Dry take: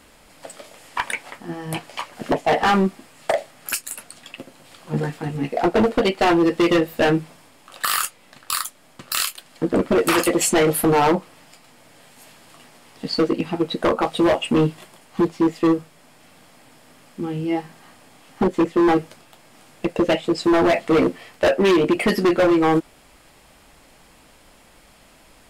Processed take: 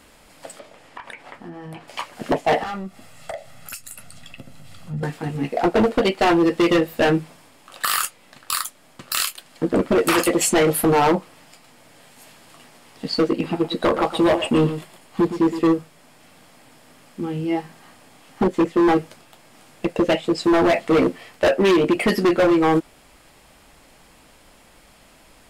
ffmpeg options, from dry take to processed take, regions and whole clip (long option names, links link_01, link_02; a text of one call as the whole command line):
ffmpeg -i in.wav -filter_complex "[0:a]asettb=1/sr,asplit=3[link_01][link_02][link_03];[link_01]atrim=end=0.594[link_04];[link_02]atrim=start=0.59:end=1.88,asetpts=PTS-STARTPTS,afade=type=in:duration=0.004:curve=qsin,afade=type=out:start_time=1.286:duration=0.004:curve=qsin,lowpass=frequency=2200:poles=1,acompressor=threshold=-31dB:ratio=16:attack=3.2:release=140:knee=1:detection=peak[link_05];[link_03]atrim=start=1.876[link_06];[link_04][link_05]acrossfade=duration=0.004:curve1=hsin:curve2=qsin[link_07];[link_07][link_06]acrossfade=duration=0.004:curve1=qsin:curve2=hsin,asettb=1/sr,asplit=3[link_08][link_09][link_10];[link_08]atrim=end=2.634[link_11];[link_09]atrim=start=2.63:end=5.03,asetpts=PTS-STARTPTS,afade=type=in:duration=0.004:curve=qsin,afade=type=out:start_time=2.396:duration=0.004:curve=qsin,aecho=1:1:1.5:0.44,atrim=end_sample=105840,asubboost=boost=10:cutoff=190,acompressor=threshold=-38dB:ratio=2:attack=3.2:release=140:knee=1:detection=peak[link_12];[link_10]atrim=start=5.026[link_13];[link_11][link_12]acrossfade=duration=0.004:curve1=hsin:curve2=qsin[link_14];[link_14][link_13]acrossfade=duration=0.004:curve1=qsin:curve2=hsin,asettb=1/sr,asplit=3[link_15][link_16][link_17];[link_15]atrim=end=13.314[link_18];[link_16]atrim=start=13.31:end=15.66,asetpts=PTS-STARTPTS,afade=type=in:duration=0.004:curve=qsin,afade=type=out:start_time=2.346:duration=0.004:curve=qsin,bandreject=frequency=6000:width=19,aecho=1:1:116:0.282,atrim=end_sample=103635[link_19];[link_17]atrim=start=15.656[link_20];[link_18][link_19]acrossfade=duration=0.004:curve1=hsin:curve2=qsin[link_21];[link_21][link_20]acrossfade=duration=0.004:curve1=qsin:curve2=hsin" out.wav